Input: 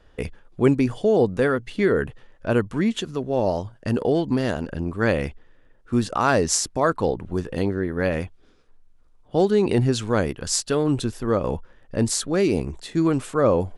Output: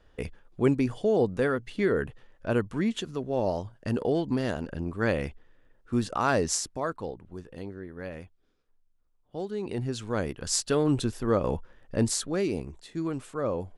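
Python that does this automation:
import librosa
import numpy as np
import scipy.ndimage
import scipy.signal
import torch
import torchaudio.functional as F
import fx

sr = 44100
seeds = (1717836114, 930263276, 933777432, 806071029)

y = fx.gain(x, sr, db=fx.line((6.45, -5.5), (7.23, -15.5), (9.46, -15.5), (10.64, -3.0), (11.98, -3.0), (12.75, -11.0)))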